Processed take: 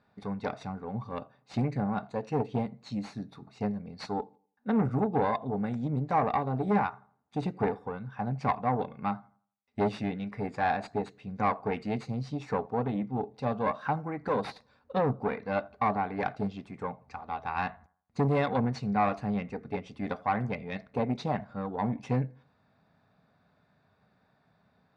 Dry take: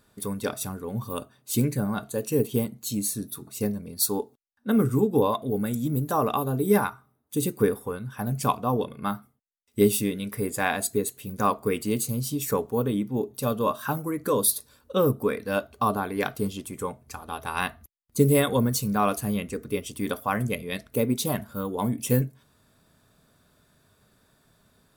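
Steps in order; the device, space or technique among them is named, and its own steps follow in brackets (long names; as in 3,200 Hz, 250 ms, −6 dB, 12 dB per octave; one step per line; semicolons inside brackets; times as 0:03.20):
analogue delay pedal into a guitar amplifier (bucket-brigade delay 84 ms, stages 1,024, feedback 33%, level −23.5 dB; tube saturation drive 19 dB, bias 0.65; loudspeaker in its box 81–4,000 Hz, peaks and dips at 180 Hz +4 dB, 350 Hz −6 dB, 780 Hz +9 dB, 2,100 Hz +3 dB, 3,200 Hz −10 dB)
level −1.5 dB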